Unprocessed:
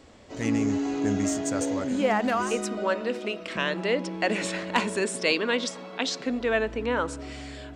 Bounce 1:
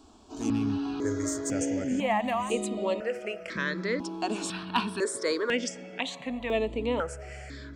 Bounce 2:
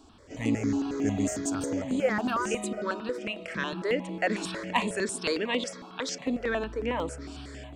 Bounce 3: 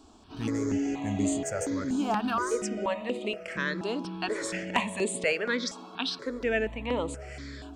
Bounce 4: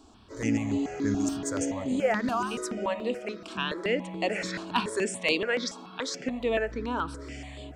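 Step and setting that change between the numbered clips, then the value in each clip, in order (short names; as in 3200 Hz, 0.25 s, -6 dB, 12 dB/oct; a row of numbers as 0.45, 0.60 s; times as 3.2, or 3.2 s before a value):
step phaser, rate: 2, 11, 4.2, 7 Hz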